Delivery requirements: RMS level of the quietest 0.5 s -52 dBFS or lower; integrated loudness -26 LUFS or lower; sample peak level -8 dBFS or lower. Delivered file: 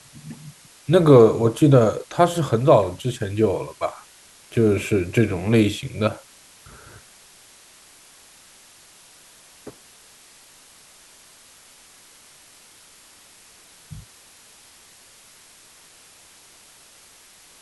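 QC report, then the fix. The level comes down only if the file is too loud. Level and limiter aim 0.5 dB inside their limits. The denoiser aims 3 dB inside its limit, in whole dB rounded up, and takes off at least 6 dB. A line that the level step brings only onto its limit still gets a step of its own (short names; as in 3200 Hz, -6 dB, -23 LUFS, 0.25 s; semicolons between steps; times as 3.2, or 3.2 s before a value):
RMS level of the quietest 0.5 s -50 dBFS: fail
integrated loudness -19.0 LUFS: fail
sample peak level -2.0 dBFS: fail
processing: gain -7.5 dB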